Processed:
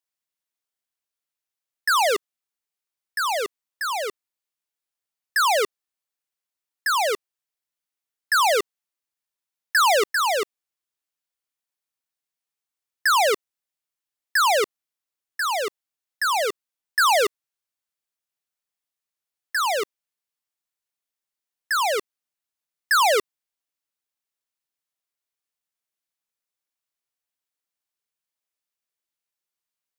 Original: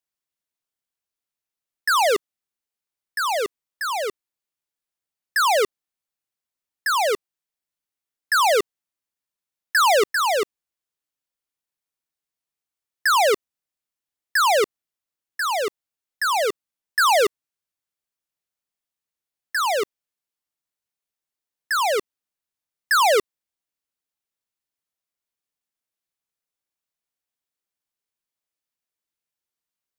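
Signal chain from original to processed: bass shelf 420 Hz -6.5 dB

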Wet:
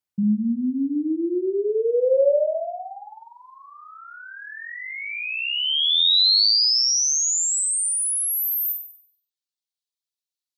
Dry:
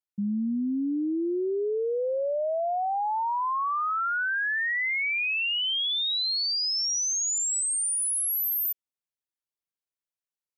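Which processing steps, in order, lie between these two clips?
reverb removal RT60 0.96 s; in parallel at -3 dB: gain riding; on the sum: high-pass sweep 95 Hz -> 3.9 kHz, 1.26–3.35 s; flutter echo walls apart 8.2 m, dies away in 0.58 s; trim -2.5 dB

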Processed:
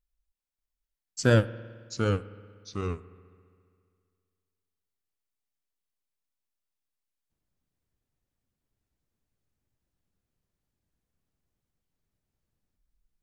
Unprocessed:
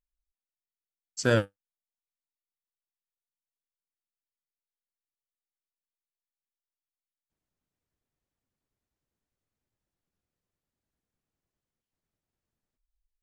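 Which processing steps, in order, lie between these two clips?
bass shelf 210 Hz +8 dB; spring tank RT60 1.7 s, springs 53 ms, chirp 75 ms, DRR 16.5 dB; ever faster or slower copies 588 ms, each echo -2 st, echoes 2, each echo -6 dB

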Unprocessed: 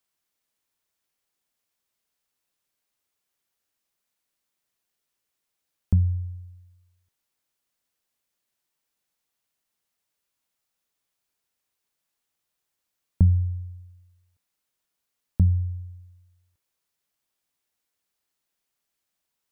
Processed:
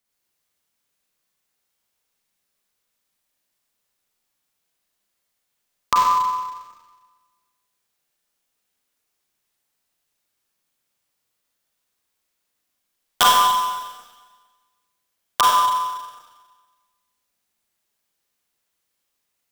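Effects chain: ring modulator 1.1 kHz; integer overflow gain 10.5 dB; Schroeder reverb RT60 1.4 s, combs from 31 ms, DRR -4 dB; trim +3 dB

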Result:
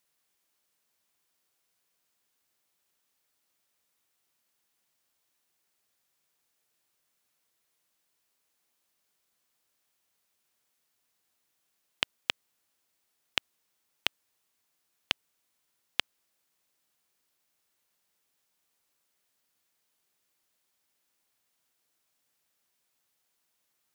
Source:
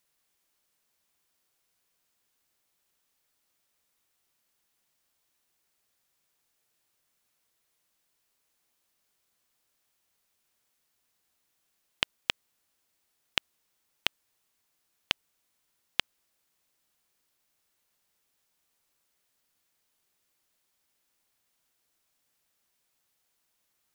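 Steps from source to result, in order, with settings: bass shelf 65 Hz -9.5 dB; trim -1 dB

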